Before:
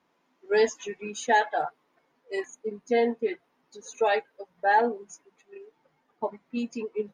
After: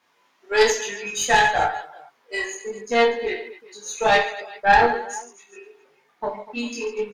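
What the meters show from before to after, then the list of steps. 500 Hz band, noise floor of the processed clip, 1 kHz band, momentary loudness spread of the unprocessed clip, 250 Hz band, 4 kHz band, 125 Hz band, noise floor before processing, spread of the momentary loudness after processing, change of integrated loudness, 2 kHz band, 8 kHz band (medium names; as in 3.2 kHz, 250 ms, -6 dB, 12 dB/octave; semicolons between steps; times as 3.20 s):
+4.0 dB, -64 dBFS, +7.0 dB, 14 LU, +1.0 dB, +12.5 dB, no reading, -72 dBFS, 16 LU, +6.5 dB, +9.5 dB, +13.0 dB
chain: tilt shelf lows -5 dB, about 800 Hz; reverse bouncing-ball echo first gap 30 ms, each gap 1.5×, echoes 5; chorus voices 4, 0.54 Hz, delay 20 ms, depth 1.5 ms; bass shelf 460 Hz -5 dB; Chebyshev shaper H 3 -19 dB, 4 -16 dB, 5 -24 dB, 6 -42 dB, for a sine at -11 dBFS; trim +8.5 dB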